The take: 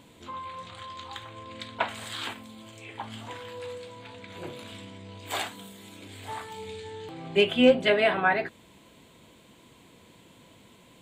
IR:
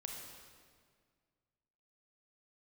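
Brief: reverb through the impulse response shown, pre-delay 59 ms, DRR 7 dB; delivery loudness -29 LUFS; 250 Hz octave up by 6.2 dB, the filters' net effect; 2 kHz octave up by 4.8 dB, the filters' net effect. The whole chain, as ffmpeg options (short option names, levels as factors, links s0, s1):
-filter_complex "[0:a]equalizer=f=250:t=o:g=6.5,equalizer=f=2000:t=o:g=6,asplit=2[s0][s1];[1:a]atrim=start_sample=2205,adelay=59[s2];[s1][s2]afir=irnorm=-1:irlink=0,volume=0.562[s3];[s0][s3]amix=inputs=2:normalize=0,volume=0.531"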